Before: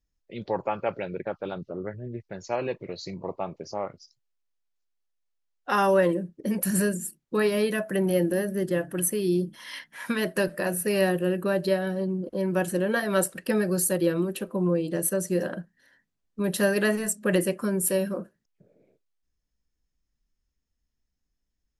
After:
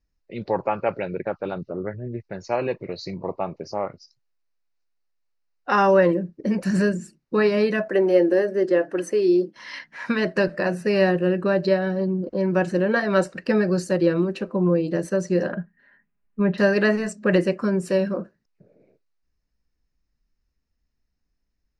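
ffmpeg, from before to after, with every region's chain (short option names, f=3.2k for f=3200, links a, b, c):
-filter_complex "[0:a]asettb=1/sr,asplit=3[a][b][c];[a]atrim=end=7.884[d];[b]atrim=start=7.88:end=9.56,asetpts=PTS-STARTPTS,afade=t=in:d=0.004:c=qsin,afade=t=out:st=1.676:d=0.004:c=qsin,highpass=f=390:t=q:w=1.6,agate=range=-33dB:threshold=-45dB:ratio=3:release=100:detection=peak[e];[c]atrim=start=9.556[f];[d][e]acrossfade=d=0.004:c1=hsin:c2=qsin[g];[g][f]acrossfade=d=0.004:c1=qsin:c2=hsin,asettb=1/sr,asplit=3[h][i][j];[h]atrim=end=15.524[k];[i]atrim=start=15.52:end=16.58,asetpts=PTS-STARTPTS,afade=t=in:d=0.004:c=qsin,afade=t=out:st=1.056:d=0.004:c=qsin,lowpass=f=2.8k:w=0.5412,lowpass=f=2.8k:w=1.3066,equalizer=f=480:t=o:w=1.8:g=-3.5,aecho=1:1:4.9:0.54,atrim=end_sample=46746[l];[j]atrim=start=16.576[m];[k][l]acrossfade=d=0.004:c1=hsin:c2=qsin[n];[n][m]acrossfade=d=0.004:c1=qsin:c2=hsin,lowpass=f=5.5k:w=0.5412,lowpass=f=5.5k:w=1.3066,equalizer=f=3.3k:w=6.8:g=-13,volume=4.5dB"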